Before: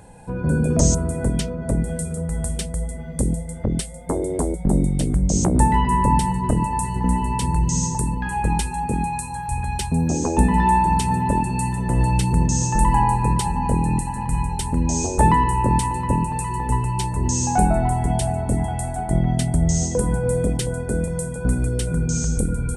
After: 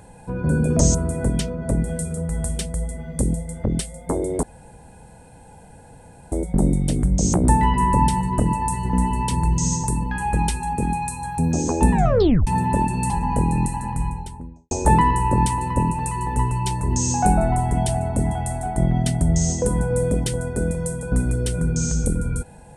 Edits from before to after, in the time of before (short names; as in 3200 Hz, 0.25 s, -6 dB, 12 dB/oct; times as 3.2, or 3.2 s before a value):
4.43 insert room tone 1.89 s
9.5–9.95 cut
10.48 tape stop 0.55 s
11.66–13.43 cut
14.07–15.04 studio fade out